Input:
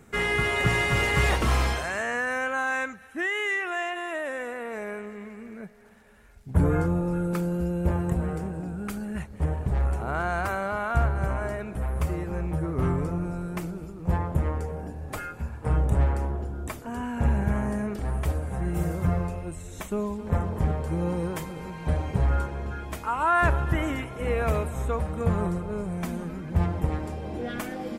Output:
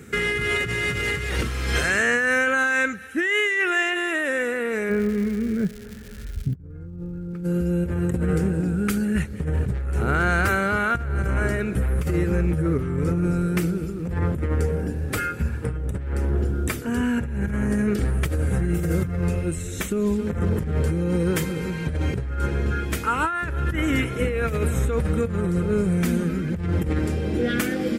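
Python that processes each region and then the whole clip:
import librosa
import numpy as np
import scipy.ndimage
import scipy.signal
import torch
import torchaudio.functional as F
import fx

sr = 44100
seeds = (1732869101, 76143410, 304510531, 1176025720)

y = fx.riaa(x, sr, side='playback', at=(4.89, 7.43), fade=0.02)
y = fx.dmg_crackle(y, sr, seeds[0], per_s=300.0, level_db=-42.0, at=(4.89, 7.43), fade=0.02)
y = fx.chain(y, sr, fx.notch(hz=6800.0, q=22.0),
    fx.quant_float(bits=8), at=(13.45, 17.36))
y = scipy.signal.sosfilt(scipy.signal.butter(2, 51.0, 'highpass', fs=sr, output='sos'), y)
y = fx.band_shelf(y, sr, hz=820.0, db=-11.5, octaves=1.1)
y = fx.over_compress(y, sr, threshold_db=-30.0, ratio=-1.0)
y = y * 10.0 ** (6.0 / 20.0)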